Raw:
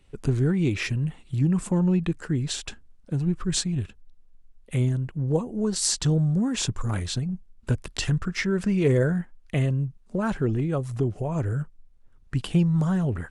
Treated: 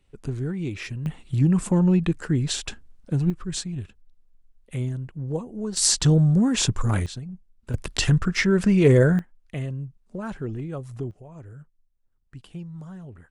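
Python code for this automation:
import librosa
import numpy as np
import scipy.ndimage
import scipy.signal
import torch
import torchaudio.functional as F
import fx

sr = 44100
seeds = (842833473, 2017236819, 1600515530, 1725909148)

y = fx.gain(x, sr, db=fx.steps((0.0, -6.0), (1.06, 3.0), (3.3, -4.5), (5.77, 4.5), (7.06, -7.5), (7.74, 5.0), (9.19, -6.5), (11.11, -16.0)))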